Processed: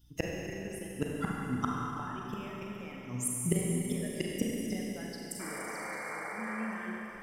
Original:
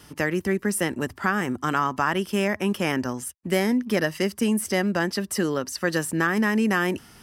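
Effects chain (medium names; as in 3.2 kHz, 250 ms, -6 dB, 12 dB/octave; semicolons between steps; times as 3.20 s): expander on every frequency bin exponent 2; 5.63–6.31 s: compression, threshold -32 dBFS, peak gain reduction 11 dB; 5.39–6.68 s: painted sound noise 400–2400 Hz -26 dBFS; inverted gate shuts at -24 dBFS, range -26 dB; hum 60 Hz, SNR 25 dB; reverberation RT60 3.5 s, pre-delay 32 ms, DRR -3 dB; trim +6.5 dB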